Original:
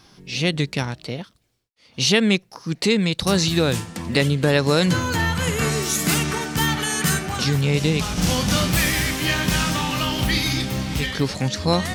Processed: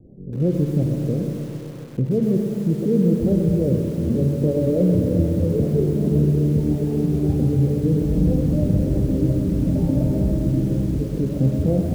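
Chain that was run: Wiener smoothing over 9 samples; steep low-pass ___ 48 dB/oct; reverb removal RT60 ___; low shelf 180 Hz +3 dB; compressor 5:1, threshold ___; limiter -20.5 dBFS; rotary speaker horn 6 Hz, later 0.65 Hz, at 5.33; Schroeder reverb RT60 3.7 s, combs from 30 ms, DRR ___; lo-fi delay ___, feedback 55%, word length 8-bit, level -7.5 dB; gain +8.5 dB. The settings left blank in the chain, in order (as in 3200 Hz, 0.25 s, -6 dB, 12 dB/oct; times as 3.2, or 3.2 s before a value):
600 Hz, 0.71 s, -22 dBFS, 3 dB, 0.129 s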